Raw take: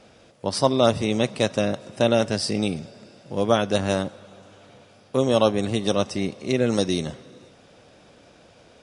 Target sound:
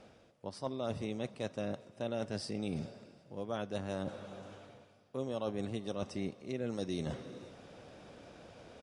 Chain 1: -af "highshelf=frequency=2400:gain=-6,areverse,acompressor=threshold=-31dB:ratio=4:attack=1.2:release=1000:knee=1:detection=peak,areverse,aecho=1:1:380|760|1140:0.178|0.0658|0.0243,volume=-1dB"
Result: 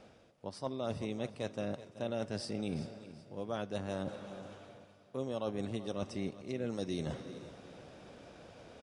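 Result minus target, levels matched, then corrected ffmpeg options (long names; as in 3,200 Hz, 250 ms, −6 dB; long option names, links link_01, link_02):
echo-to-direct +12 dB
-af "highshelf=frequency=2400:gain=-6,areverse,acompressor=threshold=-31dB:ratio=4:attack=1.2:release=1000:knee=1:detection=peak,areverse,aecho=1:1:380|760:0.0447|0.0165,volume=-1dB"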